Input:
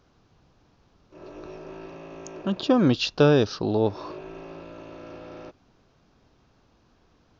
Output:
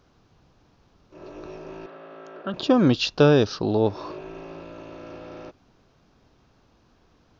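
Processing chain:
0:01.86–0:02.54: loudspeaker in its box 290–3,700 Hz, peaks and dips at 330 Hz −8 dB, 940 Hz −6 dB, 1,400 Hz +8 dB, 2,500 Hz −9 dB
level +1.5 dB

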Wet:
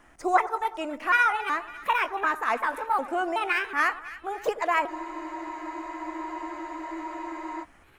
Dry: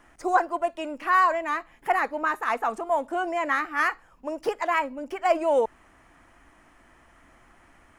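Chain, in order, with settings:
pitch shifter gated in a rhythm +4.5 semitones, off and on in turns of 373 ms
echo with a time of its own for lows and highs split 1,500 Hz, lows 94 ms, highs 276 ms, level −15 dB
frozen spectrum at 0:04.90, 2.73 s

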